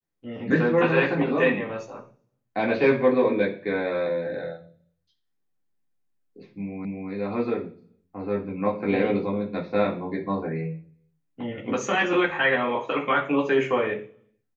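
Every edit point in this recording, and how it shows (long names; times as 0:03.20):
0:06.85: the same again, the last 0.25 s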